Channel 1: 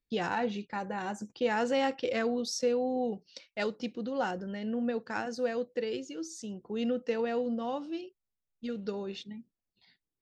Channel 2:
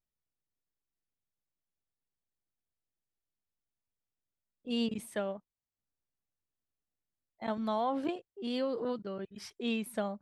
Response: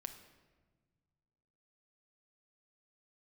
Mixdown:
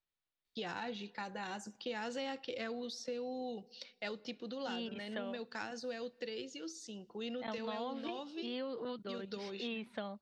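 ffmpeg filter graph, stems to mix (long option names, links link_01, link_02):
-filter_complex "[0:a]adelay=450,volume=-2dB,asplit=2[link_01][link_02];[link_02]volume=-14dB[link_03];[1:a]lowpass=2800,volume=2.5dB[link_04];[2:a]atrim=start_sample=2205[link_05];[link_03][link_05]afir=irnorm=-1:irlink=0[link_06];[link_01][link_04][link_06]amix=inputs=3:normalize=0,equalizer=frequency=3900:width_type=o:width=1:gain=8.5,acrossover=split=330|2300[link_07][link_08][link_09];[link_07]acompressor=threshold=-37dB:ratio=4[link_10];[link_08]acompressor=threshold=-40dB:ratio=4[link_11];[link_09]acompressor=threshold=-50dB:ratio=4[link_12];[link_10][link_11][link_12]amix=inputs=3:normalize=0,lowshelf=frequency=420:gain=-9.5"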